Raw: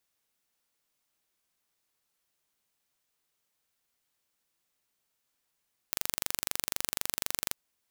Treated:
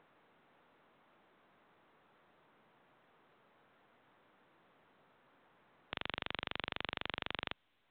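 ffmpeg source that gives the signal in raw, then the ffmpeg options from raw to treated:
-f lavfi -i "aevalsrc='0.75*eq(mod(n,1838),0)':duration=1.61:sample_rate=44100"
-filter_complex "[0:a]acrossover=split=110|1700[link_01][link_02][link_03];[link_02]acompressor=mode=upward:threshold=-53dB:ratio=2.5[link_04];[link_01][link_04][link_03]amix=inputs=3:normalize=0" -ar 8000 -c:a pcm_mulaw

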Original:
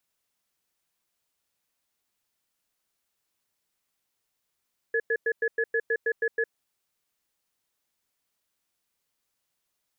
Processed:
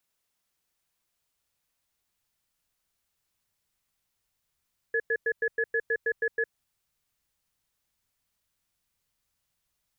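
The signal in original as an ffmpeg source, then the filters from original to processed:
-f lavfi -i "aevalsrc='0.0562*(sin(2*PI*457*t)+sin(2*PI*1700*t))*clip(min(mod(t,0.16),0.06-mod(t,0.16))/0.005,0,1)':duration=1.55:sample_rate=44100"
-af "asubboost=boost=3.5:cutoff=160"

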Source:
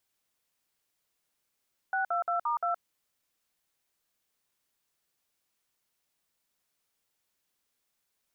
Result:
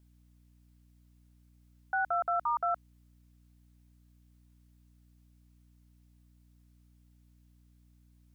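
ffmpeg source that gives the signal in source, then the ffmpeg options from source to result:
-f lavfi -i "aevalsrc='0.0355*clip(min(mod(t,0.174),0.119-mod(t,0.174))/0.002,0,1)*(eq(floor(t/0.174),0)*(sin(2*PI*770*mod(t,0.174))+sin(2*PI*1477*mod(t,0.174)))+eq(floor(t/0.174),1)*(sin(2*PI*697*mod(t,0.174))+sin(2*PI*1336*mod(t,0.174)))+eq(floor(t/0.174),2)*(sin(2*PI*697*mod(t,0.174))+sin(2*PI*1336*mod(t,0.174)))+eq(floor(t/0.174),3)*(sin(2*PI*941*mod(t,0.174))+sin(2*PI*1209*mod(t,0.174)))+eq(floor(t/0.174),4)*(sin(2*PI*697*mod(t,0.174))+sin(2*PI*1336*mod(t,0.174))))':duration=0.87:sample_rate=44100"
-af "aeval=exprs='val(0)+0.000891*(sin(2*PI*60*n/s)+sin(2*PI*2*60*n/s)/2+sin(2*PI*3*60*n/s)/3+sin(2*PI*4*60*n/s)/4+sin(2*PI*5*60*n/s)/5)':channel_layout=same"

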